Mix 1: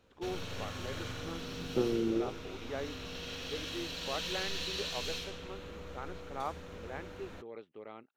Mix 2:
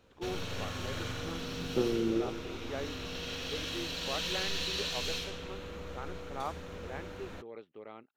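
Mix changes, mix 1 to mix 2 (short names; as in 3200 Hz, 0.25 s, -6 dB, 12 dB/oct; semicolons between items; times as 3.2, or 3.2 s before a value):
first sound +3.0 dB; second sound: send +8.5 dB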